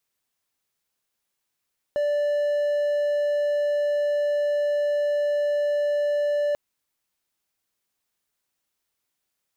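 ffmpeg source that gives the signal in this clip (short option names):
-f lavfi -i "aevalsrc='0.119*(1-4*abs(mod(585*t+0.25,1)-0.5))':d=4.59:s=44100"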